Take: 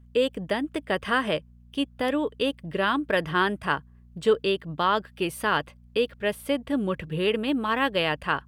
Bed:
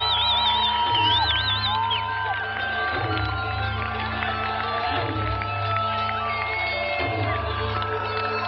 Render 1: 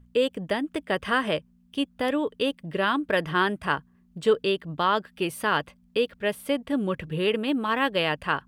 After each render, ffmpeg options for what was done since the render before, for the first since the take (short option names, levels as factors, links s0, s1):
-af "bandreject=f=60:t=h:w=4,bandreject=f=120:t=h:w=4"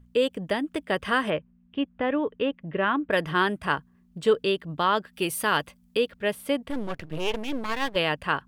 -filter_complex "[0:a]asettb=1/sr,asplit=3[s0][s1][s2];[s0]atrim=end=1.304[s3];[s1]atrim=start=1.3:end=3.11,asetpts=PTS-STARTPTS,afade=t=in:d=0.004:c=qsin,afade=t=out:st=1.806:d=0.004:c=qsin,lowpass=f=2700:w=0.5412,lowpass=f=2700:w=1.3066[s4];[s2]atrim=start=3.106[s5];[s3][s4]acrossfade=d=0.004:c1=hsin:c2=qsin[s6];[s6][s5]acrossfade=d=0.004:c1=qsin:c2=hsin,asettb=1/sr,asplit=3[s7][s8][s9];[s7]atrim=end=5.134[s10];[s8]atrim=start=5.13:end=5.97,asetpts=PTS-STARTPTS,afade=t=in:d=0.004:c=qsin,afade=t=out:st=0.836:d=0.004:c=qsin,aemphasis=mode=production:type=cd[s11];[s9]atrim=start=5.966[s12];[s10][s11]acrossfade=d=0.004:c1=hsin:c2=qsin[s13];[s13][s12]acrossfade=d=0.004:c1=qsin:c2=hsin,asettb=1/sr,asplit=3[s14][s15][s16];[s14]atrim=end=6.704[s17];[s15]atrim=start=6.7:end=7.96,asetpts=PTS-STARTPTS,afade=t=in:d=0.004:c=qsin,afade=t=out:st=1.256:d=0.004:c=qsin,aeval=exprs='max(val(0),0)':c=same[s18];[s16]atrim=start=7.956[s19];[s17][s18]acrossfade=d=0.004:c1=hsin:c2=qsin[s20];[s20][s19]acrossfade=d=0.004:c1=qsin:c2=hsin"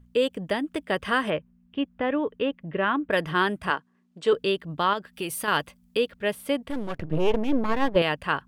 -filter_complex "[0:a]asettb=1/sr,asplit=3[s0][s1][s2];[s0]atrim=end=3.704[s3];[s1]atrim=start=3.7:end=4.33,asetpts=PTS-STARTPTS,afade=t=in:d=0.004:c=qsin,afade=t=out:st=0.626:d=0.004:c=qsin,highpass=280,lowpass=7800[s4];[s2]atrim=start=4.326[s5];[s3][s4]acrossfade=d=0.004:c1=hsin:c2=qsin[s6];[s6][s5]acrossfade=d=0.004:c1=qsin:c2=hsin,asettb=1/sr,asplit=3[s7][s8][s9];[s7]atrim=end=4.934[s10];[s8]atrim=start=4.93:end=5.48,asetpts=PTS-STARTPTS,afade=t=in:d=0.004:c=qsin,afade=t=out:st=0.546:d=0.004:c=qsin,acompressor=threshold=0.0355:ratio=2:attack=3.2:release=140:knee=1:detection=peak[s11];[s9]atrim=start=5.476[s12];[s10][s11]acrossfade=d=0.004:c1=hsin:c2=qsin[s13];[s13][s12]acrossfade=d=0.004:c1=qsin:c2=hsin,asettb=1/sr,asplit=3[s14][s15][s16];[s14]atrim=end=6.984[s17];[s15]atrim=start=6.98:end=8.02,asetpts=PTS-STARTPTS,afade=t=in:d=0.004:c=qsin,afade=t=out:st=1.036:d=0.004:c=qsin,tiltshelf=f=1500:g=8[s18];[s16]atrim=start=8.016[s19];[s17][s18]acrossfade=d=0.004:c1=hsin:c2=qsin[s20];[s20][s19]acrossfade=d=0.004:c1=qsin:c2=hsin"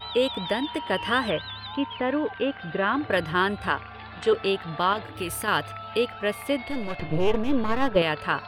-filter_complex "[1:a]volume=0.2[s0];[0:a][s0]amix=inputs=2:normalize=0"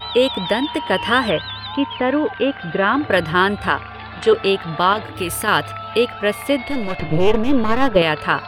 -af "volume=2.37,alimiter=limit=0.794:level=0:latency=1"